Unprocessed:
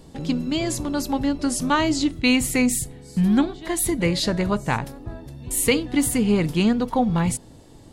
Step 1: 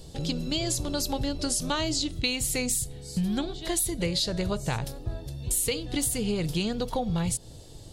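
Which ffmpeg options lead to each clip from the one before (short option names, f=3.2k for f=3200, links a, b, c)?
-af "equalizer=f=250:t=o:w=1:g=-12,equalizer=f=1k:t=o:w=1:g=-9,equalizer=f=2k:t=o:w=1:g=-8,equalizer=f=4k:t=o:w=1:g=4,acompressor=threshold=-29dB:ratio=6,volume=4.5dB"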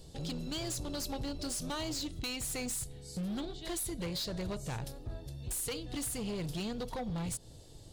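-af "asoftclip=type=hard:threshold=-26.5dB,volume=-7dB"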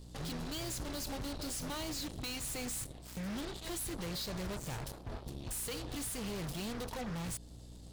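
-af "aeval=exprs='0.0224*(cos(1*acos(clip(val(0)/0.0224,-1,1)))-cos(1*PI/2))+0.00708*(cos(7*acos(clip(val(0)/0.0224,-1,1)))-cos(7*PI/2))':c=same,aeval=exprs='val(0)+0.00355*(sin(2*PI*60*n/s)+sin(2*PI*2*60*n/s)/2+sin(2*PI*3*60*n/s)/3+sin(2*PI*4*60*n/s)/4+sin(2*PI*5*60*n/s)/5)':c=same,volume=-2dB"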